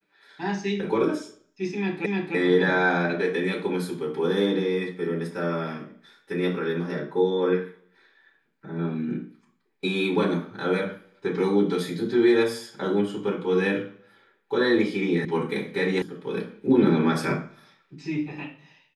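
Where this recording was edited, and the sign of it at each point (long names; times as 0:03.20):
0:02.06: the same again, the last 0.3 s
0:15.25: cut off before it has died away
0:16.02: cut off before it has died away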